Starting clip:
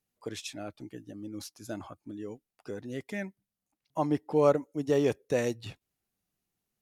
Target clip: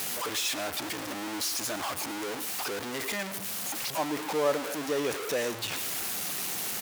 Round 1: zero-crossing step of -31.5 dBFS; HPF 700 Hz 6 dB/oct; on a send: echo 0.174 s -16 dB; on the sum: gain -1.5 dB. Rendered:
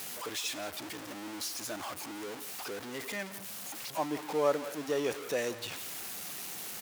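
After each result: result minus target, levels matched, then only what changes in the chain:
echo 62 ms late; zero-crossing step: distortion -6 dB
change: echo 0.112 s -16 dB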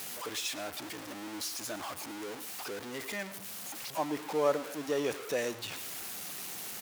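zero-crossing step: distortion -6 dB
change: zero-crossing step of -23.5 dBFS

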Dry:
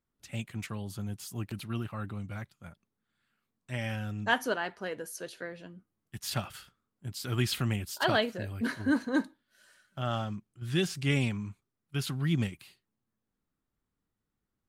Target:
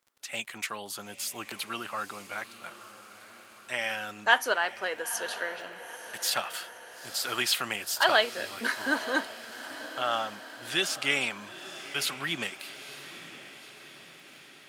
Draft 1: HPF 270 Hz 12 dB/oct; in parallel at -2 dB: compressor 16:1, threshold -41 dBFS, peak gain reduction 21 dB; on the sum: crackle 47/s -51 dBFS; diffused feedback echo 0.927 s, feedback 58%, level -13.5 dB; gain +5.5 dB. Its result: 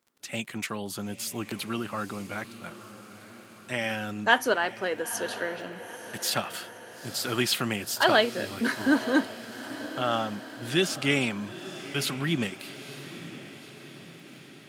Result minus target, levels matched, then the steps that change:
250 Hz band +10.0 dB
change: HPF 660 Hz 12 dB/oct

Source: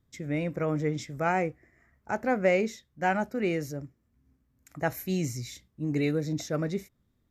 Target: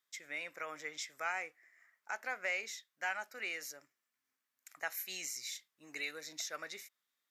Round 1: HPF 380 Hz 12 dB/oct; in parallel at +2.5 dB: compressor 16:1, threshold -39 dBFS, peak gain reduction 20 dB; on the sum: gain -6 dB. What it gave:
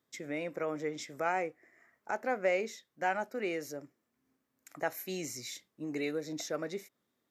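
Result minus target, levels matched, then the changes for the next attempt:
500 Hz band +10.0 dB
change: HPF 1500 Hz 12 dB/oct

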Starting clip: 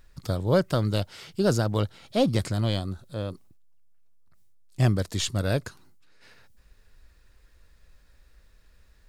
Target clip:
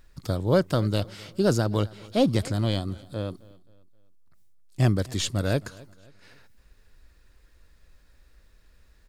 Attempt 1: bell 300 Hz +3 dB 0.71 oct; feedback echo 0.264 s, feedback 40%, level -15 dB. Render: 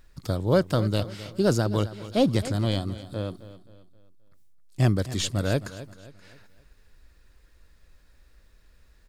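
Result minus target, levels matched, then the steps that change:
echo-to-direct +7 dB
change: feedback echo 0.264 s, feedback 40%, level -22 dB

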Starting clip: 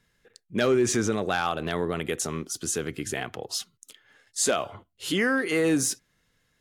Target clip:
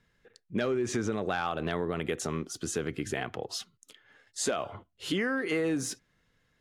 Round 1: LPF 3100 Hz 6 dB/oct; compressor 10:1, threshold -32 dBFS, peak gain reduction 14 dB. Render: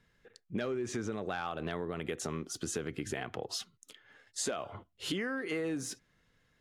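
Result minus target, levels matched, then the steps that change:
compressor: peak gain reduction +6 dB
change: compressor 10:1, threshold -25.5 dBFS, peak gain reduction 8 dB

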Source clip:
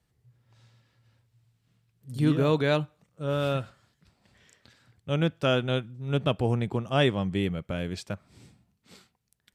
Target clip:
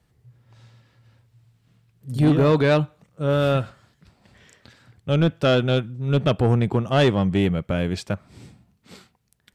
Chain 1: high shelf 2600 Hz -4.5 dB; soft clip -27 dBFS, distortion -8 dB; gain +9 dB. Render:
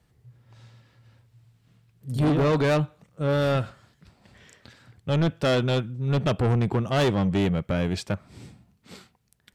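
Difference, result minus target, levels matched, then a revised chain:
soft clip: distortion +7 dB
high shelf 2600 Hz -4.5 dB; soft clip -19.5 dBFS, distortion -14 dB; gain +9 dB

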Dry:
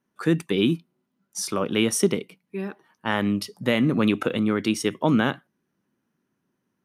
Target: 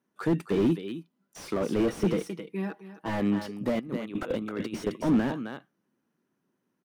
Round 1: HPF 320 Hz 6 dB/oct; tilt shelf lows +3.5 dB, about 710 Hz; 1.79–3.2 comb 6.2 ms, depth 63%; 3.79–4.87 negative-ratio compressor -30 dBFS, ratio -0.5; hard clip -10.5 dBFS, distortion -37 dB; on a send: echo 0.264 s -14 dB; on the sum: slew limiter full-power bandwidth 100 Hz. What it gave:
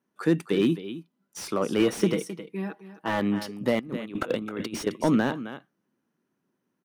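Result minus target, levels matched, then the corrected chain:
slew limiter: distortion -9 dB
HPF 320 Hz 6 dB/oct; tilt shelf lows +3.5 dB, about 710 Hz; 1.79–3.2 comb 6.2 ms, depth 63%; 3.79–4.87 negative-ratio compressor -30 dBFS, ratio -0.5; hard clip -10.5 dBFS, distortion -37 dB; on a send: echo 0.264 s -14 dB; on the sum: slew limiter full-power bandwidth 33 Hz

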